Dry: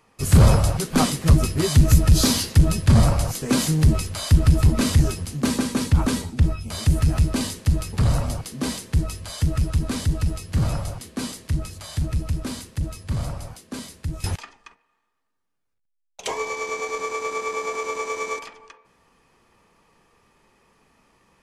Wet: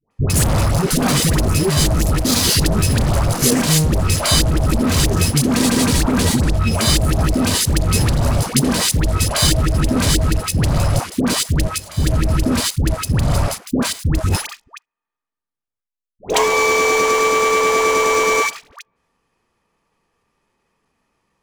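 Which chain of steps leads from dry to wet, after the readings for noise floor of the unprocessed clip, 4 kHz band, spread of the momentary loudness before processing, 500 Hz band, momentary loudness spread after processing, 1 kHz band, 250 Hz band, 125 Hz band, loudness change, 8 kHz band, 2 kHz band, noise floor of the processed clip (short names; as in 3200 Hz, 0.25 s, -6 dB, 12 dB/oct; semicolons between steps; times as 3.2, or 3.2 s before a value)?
-73 dBFS, +10.5 dB, 14 LU, +10.0 dB, 5 LU, +10.0 dB, +6.0 dB, +2.5 dB, +5.5 dB, +10.5 dB, +11.0 dB, under -85 dBFS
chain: sample leveller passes 5; level quantiser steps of 18 dB; dispersion highs, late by 0.109 s, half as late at 760 Hz; gain +3 dB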